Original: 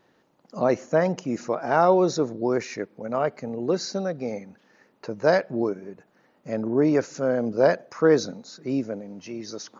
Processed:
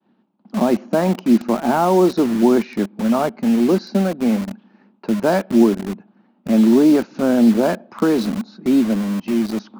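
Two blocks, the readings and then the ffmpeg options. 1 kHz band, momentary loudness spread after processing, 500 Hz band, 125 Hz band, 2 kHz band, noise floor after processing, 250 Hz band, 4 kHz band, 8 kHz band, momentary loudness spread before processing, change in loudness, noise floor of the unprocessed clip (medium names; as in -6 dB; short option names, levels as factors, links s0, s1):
+4.5 dB, 10 LU, +3.0 dB, +6.5 dB, +2.0 dB, -60 dBFS, +12.5 dB, +5.0 dB, no reading, 16 LU, +7.0 dB, -64 dBFS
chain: -filter_complex "[0:a]agate=range=0.0224:threshold=0.00141:ratio=3:detection=peak,equalizer=f=200:t=o:w=0.47:g=13,acrossover=split=240|2800[s0][s1][s2];[s0]acompressor=threshold=0.0158:ratio=12[s3];[s1]alimiter=limit=0.178:level=0:latency=1:release=148[s4];[s3][s4][s2]amix=inputs=3:normalize=0,highpass=f=100:w=0.5412,highpass=f=100:w=1.3066,equalizer=f=140:t=q:w=4:g=-6,equalizer=f=230:t=q:w=4:g=8,equalizer=f=340:t=q:w=4:g=5,equalizer=f=490:t=q:w=4:g=-7,equalizer=f=860:t=q:w=4:g=4,equalizer=f=1900:t=q:w=4:g=-8,lowpass=f=3800:w=0.5412,lowpass=f=3800:w=1.3066,asplit=2[s5][s6];[s6]acrusher=bits=4:mix=0:aa=0.000001,volume=0.562[s7];[s5][s7]amix=inputs=2:normalize=0,volume=1.41"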